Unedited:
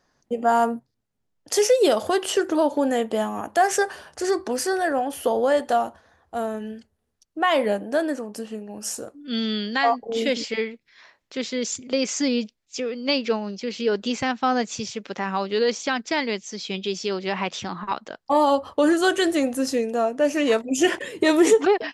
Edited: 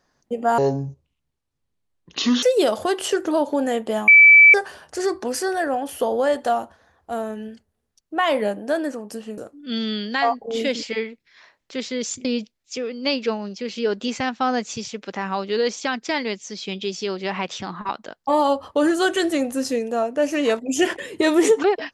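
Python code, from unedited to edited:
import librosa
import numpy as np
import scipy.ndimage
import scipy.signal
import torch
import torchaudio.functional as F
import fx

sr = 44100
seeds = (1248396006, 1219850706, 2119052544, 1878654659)

y = fx.edit(x, sr, fx.speed_span(start_s=0.58, length_s=1.09, speed=0.59),
    fx.bleep(start_s=3.32, length_s=0.46, hz=2310.0, db=-6.0),
    fx.cut(start_s=8.62, length_s=0.37),
    fx.cut(start_s=11.86, length_s=0.41), tone=tone)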